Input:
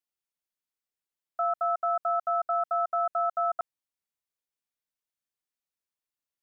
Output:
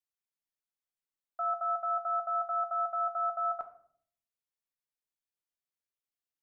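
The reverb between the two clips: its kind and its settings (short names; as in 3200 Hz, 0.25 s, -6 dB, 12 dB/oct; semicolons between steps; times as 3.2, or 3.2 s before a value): shoebox room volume 81 m³, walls mixed, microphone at 0.35 m; gain -7 dB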